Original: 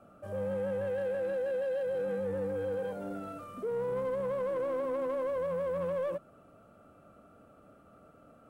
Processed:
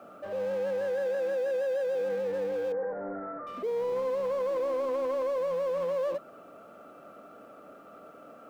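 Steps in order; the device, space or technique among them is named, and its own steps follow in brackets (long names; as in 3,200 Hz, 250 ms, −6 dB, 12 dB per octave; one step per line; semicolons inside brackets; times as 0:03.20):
phone line with mismatched companding (band-pass filter 300–3,500 Hz; mu-law and A-law mismatch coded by mu)
0:02.72–0:03.47: elliptic low-pass filter 1,900 Hz, stop band 40 dB
level +2 dB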